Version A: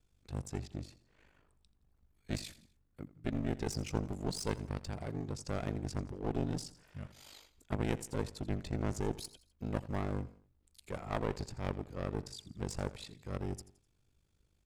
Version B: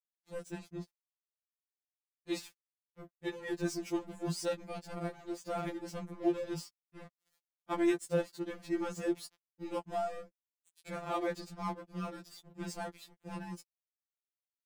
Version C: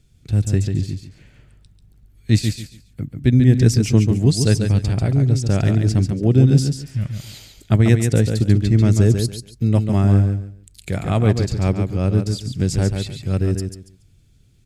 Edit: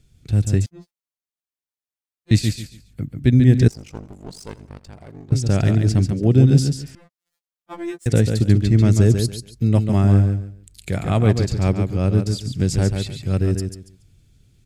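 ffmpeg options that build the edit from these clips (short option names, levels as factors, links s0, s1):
-filter_complex "[1:a]asplit=2[s0][s1];[2:a]asplit=4[s2][s3][s4][s5];[s2]atrim=end=0.662[s6];[s0]atrim=start=0.658:end=2.312[s7];[s3]atrim=start=2.308:end=3.682[s8];[0:a]atrim=start=3.678:end=5.322[s9];[s4]atrim=start=5.318:end=6.952[s10];[s1]atrim=start=6.948:end=8.062[s11];[s5]atrim=start=8.058[s12];[s6][s7]acrossfade=d=0.004:c1=hsin:c2=hsin[s13];[s13][s8]acrossfade=d=0.004:c1=hsin:c2=hsin[s14];[s14][s9]acrossfade=d=0.004:c1=hsin:c2=hsin[s15];[s15][s10]acrossfade=d=0.004:c1=hsin:c2=hsin[s16];[s16][s11]acrossfade=d=0.004:c1=hsin:c2=hsin[s17];[s17][s12]acrossfade=d=0.004:c1=hsin:c2=hsin"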